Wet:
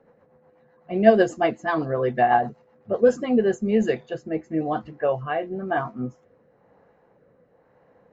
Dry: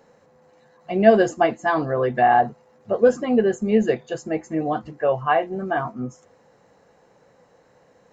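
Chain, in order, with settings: rotary cabinet horn 8 Hz, later 1 Hz, at 2.91 s; level-controlled noise filter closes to 1.8 kHz, open at -16 dBFS

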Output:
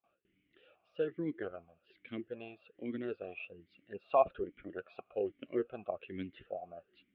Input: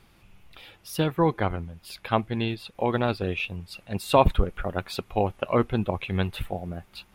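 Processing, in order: gate with hold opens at -46 dBFS; distance through air 370 m; talking filter a-i 1.2 Hz

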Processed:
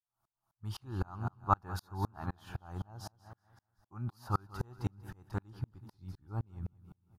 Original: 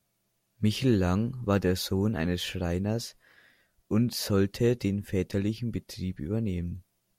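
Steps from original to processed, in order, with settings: FFT filter 120 Hz 0 dB, 220 Hz -12 dB, 340 Hz -7 dB, 500 Hz -17 dB, 820 Hz +12 dB, 1.4 kHz +7 dB, 2 kHz -15 dB, 5 kHz -9 dB, 7.2 kHz -11 dB, 10 kHz -7 dB; feedback delay 189 ms, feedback 46%, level -12 dB; sawtooth tremolo in dB swelling 3.9 Hz, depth 37 dB; trim +1.5 dB

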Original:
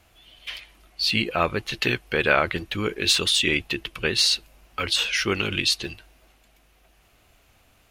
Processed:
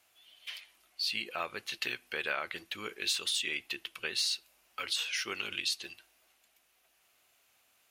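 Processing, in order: high-pass 850 Hz 6 dB/octave; treble shelf 5.3 kHz +6.5 dB; compression 2:1, threshold -23 dBFS, peak gain reduction 6 dB; on a send: reverberation RT60 0.35 s, pre-delay 5 ms, DRR 19 dB; on the sum: trim -9 dB

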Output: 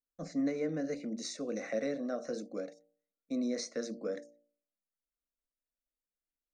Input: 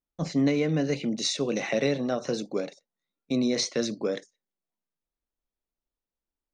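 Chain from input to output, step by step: static phaser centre 610 Hz, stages 8; de-hum 58.12 Hz, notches 16; small resonant body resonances 430/2900 Hz, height 12 dB, ringing for 45 ms; trim -8 dB

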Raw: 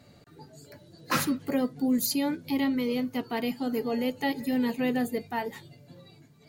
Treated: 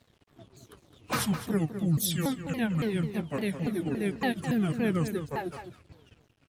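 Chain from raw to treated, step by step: sawtooth pitch modulation -10 st, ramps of 282 ms; echo from a far wall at 36 m, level -9 dB; crossover distortion -56.5 dBFS

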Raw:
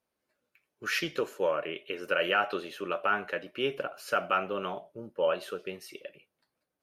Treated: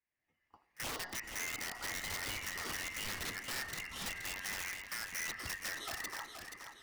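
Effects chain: four frequency bands reordered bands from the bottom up 2143; Doppler pass-by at 3.13 s, 9 m/s, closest 2.8 m; recorder AGC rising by 21 dB/s; peak limiter -25.5 dBFS, peak gain reduction 9 dB; compression 12:1, threshold -45 dBFS, peak gain reduction 15 dB; low-pass 1.8 kHz 6 dB/octave; algorithmic reverb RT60 1.5 s, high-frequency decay 0.85×, pre-delay 45 ms, DRR 17.5 dB; integer overflow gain 46.5 dB; pre-echo 33 ms -22.5 dB; modulated delay 476 ms, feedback 49%, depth 61 cents, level -7.5 dB; trim +12 dB

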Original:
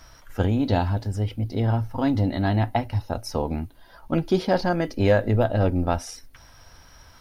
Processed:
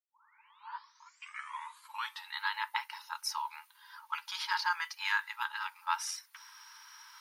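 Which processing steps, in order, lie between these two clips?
tape start-up on the opening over 2.37 s; brick-wall FIR high-pass 850 Hz

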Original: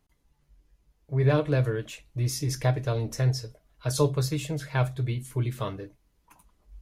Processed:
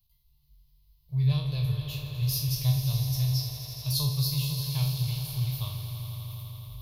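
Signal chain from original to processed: spectral sustain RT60 0.51 s; FFT filter 140 Hz 0 dB, 220 Hz -25 dB, 350 Hz -27 dB, 1.1 kHz -12 dB, 1.5 kHz -29 dB, 2.7 kHz -4 dB, 4.3 kHz +7 dB, 7.8 kHz -14 dB, 13 kHz +13 dB; on a send: echo with a slow build-up 83 ms, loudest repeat 5, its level -12 dB; on the sum: trim -1 dB

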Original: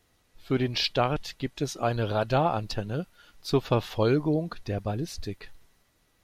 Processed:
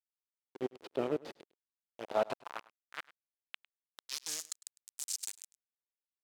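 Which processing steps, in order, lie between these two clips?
high-order bell 4.6 kHz +11 dB 2.7 oct; band-stop 740 Hz, Q 12; slow attack 406 ms; modulation noise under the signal 12 dB; small resonant body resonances 230/1300/1900/3000 Hz, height 10 dB, ringing for 65 ms; bit crusher 4-bit; band-pass sweep 400 Hz -> 7.7 kHz, 1.63–4.54 s; on a send: delay 103 ms -20.5 dB; on the sum: trim +1 dB

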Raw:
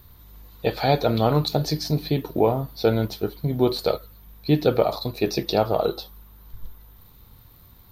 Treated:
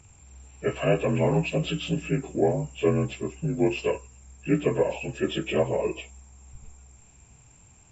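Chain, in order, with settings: frequency axis rescaled in octaves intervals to 84%; trim -1.5 dB

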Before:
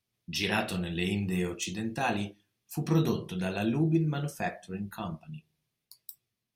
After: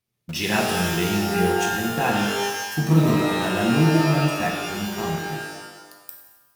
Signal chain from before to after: peaking EQ 4 kHz -4 dB 2 oct; in parallel at -5 dB: bit crusher 6-bit; on the sum: pitch-shifted reverb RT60 1.1 s, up +12 st, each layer -2 dB, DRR 1.5 dB; trim +2 dB

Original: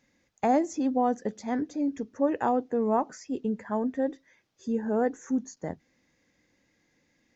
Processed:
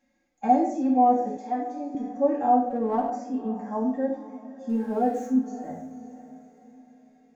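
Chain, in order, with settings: 4.69–5.27 s: jump at every zero crossing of -41 dBFS; peaking EQ 730 Hz +10.5 dB 0.22 oct; echo that smears into a reverb 554 ms, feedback 41%, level -15 dB; reverberation RT60 0.70 s, pre-delay 4 ms, DRR -4.5 dB; harmonic-percussive split percussive -16 dB; 1.37–1.95 s: high-pass 370 Hz 12 dB/octave; 2.70–3.10 s: sliding maximum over 3 samples; trim -6.5 dB

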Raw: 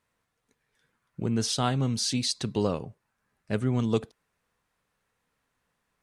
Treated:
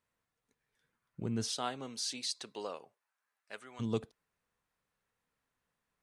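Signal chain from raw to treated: 1.50–3.79 s: high-pass 330 Hz -> 1 kHz 12 dB/octave; trim -8 dB

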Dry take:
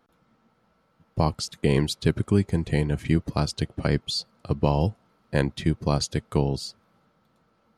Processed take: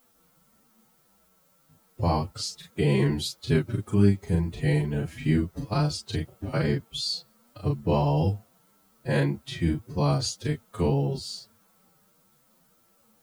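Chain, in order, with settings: chorus 2.9 Hz, delay 20 ms, depth 2.9 ms; added noise blue -67 dBFS; time stretch by phase-locked vocoder 1.7×; trim +1.5 dB

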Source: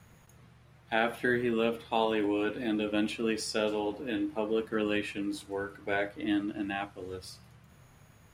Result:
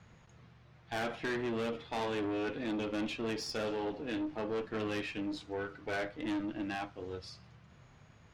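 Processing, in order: low-pass 6.1 kHz 24 dB/octave; valve stage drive 31 dB, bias 0.4

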